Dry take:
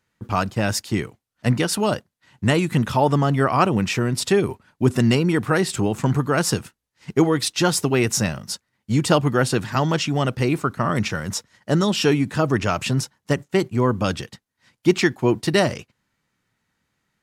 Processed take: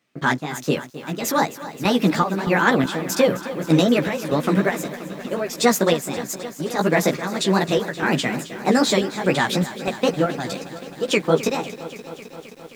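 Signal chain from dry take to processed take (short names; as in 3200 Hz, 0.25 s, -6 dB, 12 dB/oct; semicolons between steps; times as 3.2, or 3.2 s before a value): HPF 110 Hz; high shelf 6200 Hz -5.5 dB; notch 7600 Hz, Q 5.3; in parallel at +2 dB: limiter -10.5 dBFS, peak gain reduction 7.5 dB; on the sum: chopper 1.2 Hz, depth 65%, duty 60%; chorus 3 Hz, delay 16.5 ms, depth 5.6 ms; speed mistake 33 rpm record played at 45 rpm; lo-fi delay 0.263 s, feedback 80%, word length 7-bit, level -14.5 dB; gain -1 dB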